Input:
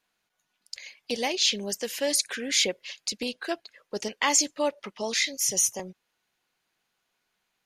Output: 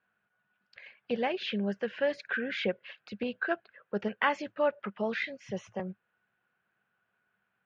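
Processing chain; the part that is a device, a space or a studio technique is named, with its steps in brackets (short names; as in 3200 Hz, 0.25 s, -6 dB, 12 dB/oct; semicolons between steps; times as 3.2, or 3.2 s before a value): bass cabinet (speaker cabinet 71–2400 Hz, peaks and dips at 110 Hz +9 dB, 200 Hz +6 dB, 290 Hz -7 dB, 940 Hz -4 dB, 1500 Hz +9 dB, 2100 Hz -6 dB)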